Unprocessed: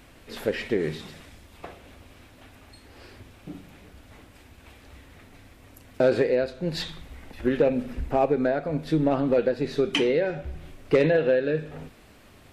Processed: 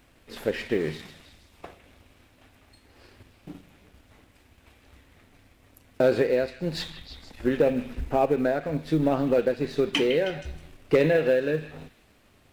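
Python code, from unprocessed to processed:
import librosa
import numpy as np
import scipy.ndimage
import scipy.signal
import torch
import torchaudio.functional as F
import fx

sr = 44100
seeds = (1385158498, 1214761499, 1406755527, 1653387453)

p1 = fx.law_mismatch(x, sr, coded='A')
y = p1 + fx.echo_stepped(p1, sr, ms=158, hz=2500.0, octaves=0.7, feedback_pct=70, wet_db=-8.0, dry=0)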